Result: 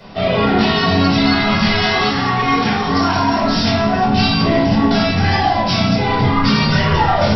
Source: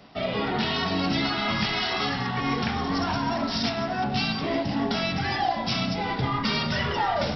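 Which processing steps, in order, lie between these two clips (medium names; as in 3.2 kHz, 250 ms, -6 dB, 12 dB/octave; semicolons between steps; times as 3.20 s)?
2.04–3.40 s: bass shelf 160 Hz -10 dB; in parallel at +0.5 dB: peak limiter -24 dBFS, peak gain reduction 10 dB; on the sum: simulated room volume 470 m³, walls furnished, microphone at 5 m; trim -1 dB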